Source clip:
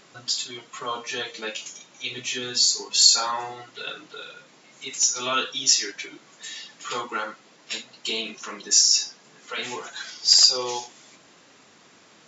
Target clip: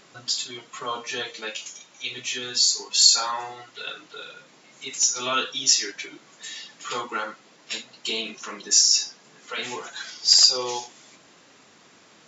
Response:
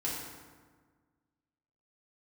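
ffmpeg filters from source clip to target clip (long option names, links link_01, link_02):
-filter_complex "[0:a]asettb=1/sr,asplit=3[link_01][link_02][link_03];[link_01]atrim=end=1.334[link_04];[link_02]atrim=start=1.33:end=4.15,asetpts=PTS-STARTPTS,afade=type=in:duration=0.004:curve=qsin,afade=type=out:start_time=2.816:duration=0.004:curve=qsin,equalizer=frequency=180:width=0.37:gain=-4.5[link_05];[link_03]atrim=start=4.146[link_06];[link_04][link_05]acrossfade=duration=0.004:curve1=hsin:curve2=qsin[link_07];[link_07][link_06]acrossfade=duration=0.004:curve1=qsin:curve2=hsin"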